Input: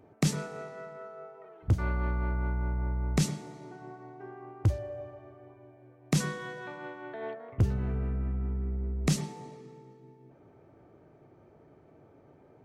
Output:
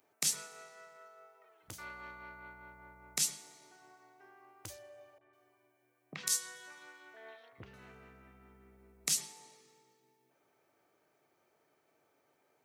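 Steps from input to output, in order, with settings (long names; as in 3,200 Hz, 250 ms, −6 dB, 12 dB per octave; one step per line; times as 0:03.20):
first difference
0:05.18–0:07.74: three-band delay without the direct sound lows, mids, highs 30/150 ms, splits 700/2,900 Hz
level +6.5 dB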